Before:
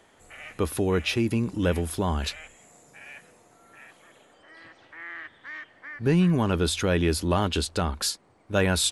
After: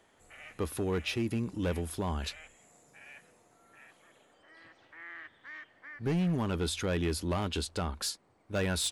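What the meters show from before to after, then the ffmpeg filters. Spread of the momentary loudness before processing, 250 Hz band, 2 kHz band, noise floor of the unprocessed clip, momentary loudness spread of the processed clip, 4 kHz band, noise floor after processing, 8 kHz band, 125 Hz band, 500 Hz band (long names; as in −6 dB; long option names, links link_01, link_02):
19 LU, −7.5 dB, −8.0 dB, −59 dBFS, 18 LU, −7.0 dB, −66 dBFS, −7.0 dB, −7.5 dB, −8.0 dB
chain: -af "asoftclip=type=hard:threshold=-18.5dB,volume=-7dB"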